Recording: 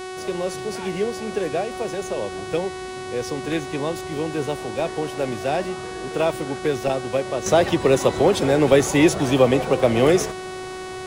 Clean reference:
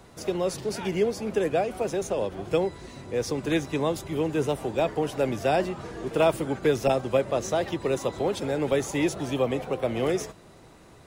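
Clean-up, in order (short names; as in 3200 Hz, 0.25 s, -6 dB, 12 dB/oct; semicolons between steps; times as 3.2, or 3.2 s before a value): de-hum 372.2 Hz, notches 30; gain 0 dB, from 7.46 s -9.5 dB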